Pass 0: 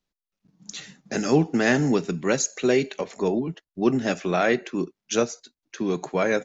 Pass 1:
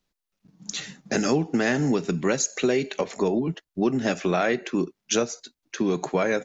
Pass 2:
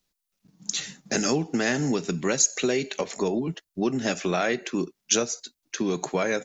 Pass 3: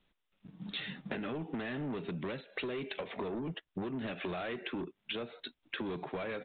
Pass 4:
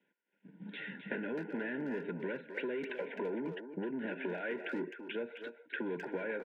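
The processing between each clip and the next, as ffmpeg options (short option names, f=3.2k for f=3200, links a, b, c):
-af "acompressor=threshold=-25dB:ratio=4,volume=5dB"
-af "highshelf=f=4k:g=10,volume=-2.5dB"
-af "alimiter=limit=-18dB:level=0:latency=1:release=303,aresample=8000,asoftclip=type=tanh:threshold=-29dB,aresample=44100,acompressor=threshold=-42dB:ratio=10,volume=6dB"
-filter_complex "[0:a]asuperstop=centerf=1200:order=20:qfactor=3.2,highpass=f=190:w=0.5412,highpass=f=190:w=1.3066,equalizer=f=470:t=q:w=4:g=4,equalizer=f=730:t=q:w=4:g=-10,equalizer=f=1.4k:t=q:w=4:g=8,lowpass=f=2.4k:w=0.5412,lowpass=f=2.4k:w=1.3066,asplit=2[a][b];[b]adelay=260,highpass=300,lowpass=3.4k,asoftclip=type=hard:threshold=-33.5dB,volume=-7dB[c];[a][c]amix=inputs=2:normalize=0"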